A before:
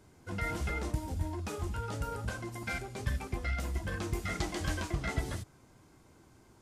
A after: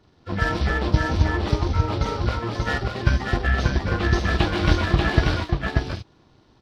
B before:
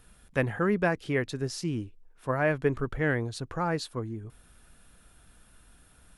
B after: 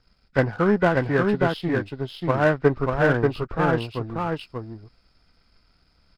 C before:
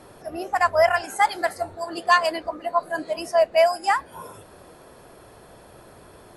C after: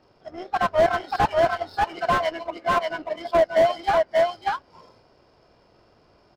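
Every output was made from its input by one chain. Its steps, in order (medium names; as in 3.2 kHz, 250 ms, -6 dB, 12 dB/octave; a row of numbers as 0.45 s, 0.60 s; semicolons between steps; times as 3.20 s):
knee-point frequency compression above 1.2 kHz 1.5:1; power-law waveshaper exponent 1.4; on a send: delay 587 ms -3 dB; on the sum: slew-rate limiter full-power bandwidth 93 Hz; normalise loudness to -23 LUFS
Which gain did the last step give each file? +17.0 dB, +9.5 dB, +3.5 dB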